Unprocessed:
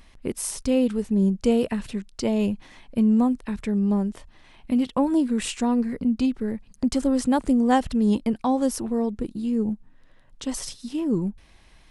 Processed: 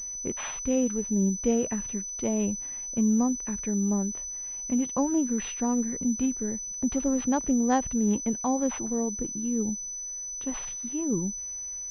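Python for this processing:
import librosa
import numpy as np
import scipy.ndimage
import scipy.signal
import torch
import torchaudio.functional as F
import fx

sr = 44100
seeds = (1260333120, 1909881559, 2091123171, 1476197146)

y = fx.pwm(x, sr, carrier_hz=6000.0)
y = y * 10.0 ** (-4.5 / 20.0)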